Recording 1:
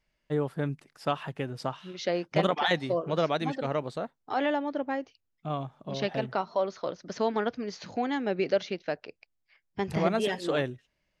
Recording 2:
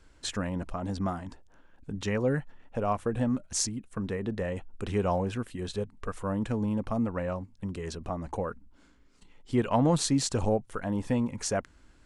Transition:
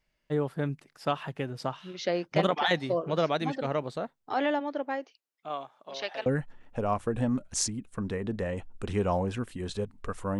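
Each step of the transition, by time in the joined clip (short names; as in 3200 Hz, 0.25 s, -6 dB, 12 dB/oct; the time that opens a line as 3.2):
recording 1
4.59–6.26 HPF 260 Hz -> 800 Hz
6.26 switch to recording 2 from 2.25 s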